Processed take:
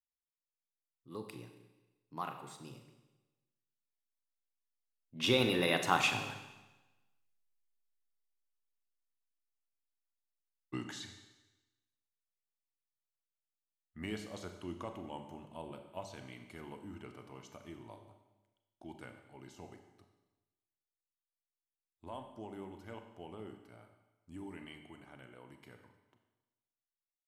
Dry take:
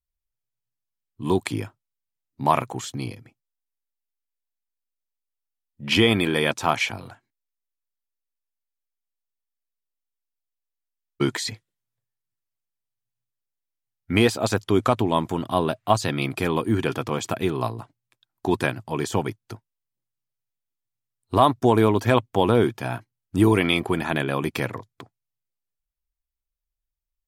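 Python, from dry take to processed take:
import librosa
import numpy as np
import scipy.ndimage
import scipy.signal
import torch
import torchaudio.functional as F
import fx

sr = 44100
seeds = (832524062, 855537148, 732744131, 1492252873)

y = fx.doppler_pass(x, sr, speed_mps=40, closest_m=24.0, pass_at_s=6.83)
y = fx.hum_notches(y, sr, base_hz=50, count=4)
y = fx.rev_schroeder(y, sr, rt60_s=1.1, comb_ms=30, drr_db=6.0)
y = y * 10.0 ** (-2.0 / 20.0)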